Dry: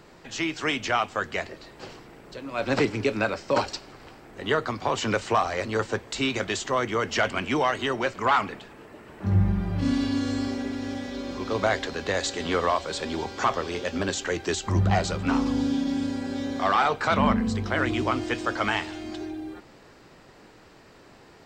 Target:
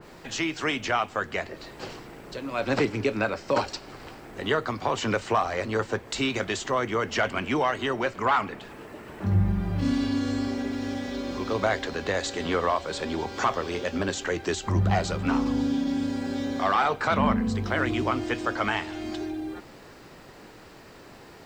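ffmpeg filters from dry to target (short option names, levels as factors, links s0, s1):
-filter_complex "[0:a]asplit=2[s0][s1];[s1]acompressor=threshold=0.0178:ratio=6,volume=1.06[s2];[s0][s2]amix=inputs=2:normalize=0,acrusher=bits=9:mix=0:aa=0.000001,adynamicequalizer=threshold=0.0141:dfrequency=2700:dqfactor=0.7:tfrequency=2700:tqfactor=0.7:attack=5:release=100:ratio=0.375:range=2:mode=cutabove:tftype=highshelf,volume=0.75"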